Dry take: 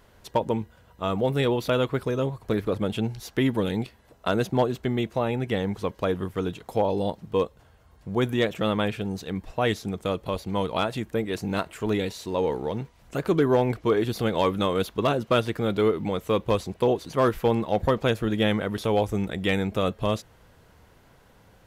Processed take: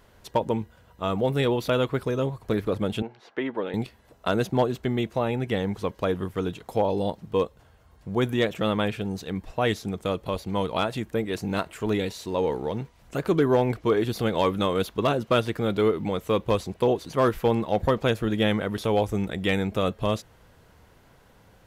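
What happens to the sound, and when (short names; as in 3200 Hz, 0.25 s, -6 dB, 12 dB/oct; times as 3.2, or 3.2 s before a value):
3.02–3.74 BPF 390–2100 Hz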